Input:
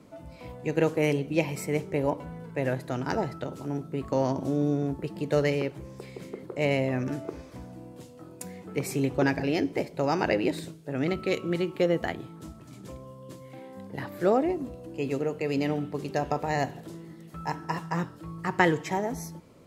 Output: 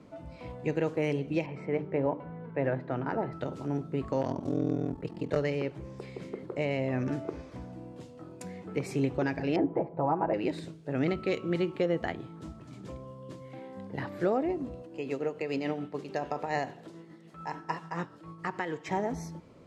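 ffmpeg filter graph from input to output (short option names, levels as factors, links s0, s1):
-filter_complex "[0:a]asettb=1/sr,asplit=3[s0][s1][s2];[s0]atrim=end=1.464[s3];[s1]atrim=start=1.46:end=3.33,asetpts=PTS-STARTPTS,afade=t=in:d=0.004:c=qsin,afade=t=out:st=1.866:d=0.004:c=qsin,highpass=110,lowpass=2100,bandreject=f=50:t=h:w=6,bandreject=f=100:t=h:w=6,bandreject=f=150:t=h:w=6,bandreject=f=200:t=h:w=6,bandreject=f=250:t=h:w=6,bandreject=f=300:t=h:w=6,bandreject=f=350:t=h:w=6,bandreject=f=400:t=h:w=6[s4];[s2]atrim=start=3.326[s5];[s3][s4]acrossfade=d=0.004:c1=hsin:c2=qsin[s6];[s6][s5]acrossfade=d=0.004:c1=qsin:c2=hsin,asettb=1/sr,asplit=3[s7][s8][s9];[s7]atrim=end=4.214[s10];[s8]atrim=start=4.21:end=5.37,asetpts=PTS-STARTPTS,afade=t=in:d=0.004:c=qsin,afade=t=out:st=1.156:d=0.004:c=qsin,aeval=exprs='val(0)*sin(2*PI*21*n/s)':c=same,aeval=exprs='0.15*(abs(mod(val(0)/0.15+3,4)-2)-1)':c=same[s11];[s9]atrim=start=5.366[s12];[s10][s11]acrossfade=d=0.004:c1=hsin:c2=qsin[s13];[s13][s12]acrossfade=d=0.004:c1=qsin:c2=hsin,asettb=1/sr,asplit=3[s14][s15][s16];[s14]atrim=end=9.564[s17];[s15]atrim=start=9.56:end=10.34,asetpts=PTS-STARTPTS,afade=t=in:d=0.004:c=qsin,afade=t=out:st=0.776:d=0.004:c=qsin,lowpass=f=900:t=q:w=2.4,aecho=1:1:6.1:0.58,atrim=end_sample=34398[s18];[s16]atrim=start=10.336[s19];[s17][s18]acrossfade=d=0.004:c1=hsin:c2=qsin[s20];[s20][s19]acrossfade=d=0.004:c1=qsin:c2=hsin,asettb=1/sr,asplit=3[s21][s22][s23];[s21]atrim=end=14.824[s24];[s22]atrim=start=14.82:end=18.89,asetpts=PTS-STARTPTS,afade=t=in:d=0.004:c=qsin,afade=t=out:st=4.066:d=0.004:c=qsin,highpass=f=290:p=1,tremolo=f=6.9:d=0.45[s25];[s23]atrim=start=18.886[s26];[s24][s25]acrossfade=d=0.004:c1=hsin:c2=qsin[s27];[s27][s26]acrossfade=d=0.004:c1=qsin:c2=hsin,lowpass=9200,alimiter=limit=0.133:level=0:latency=1:release=392,highshelf=f=6200:g=-10"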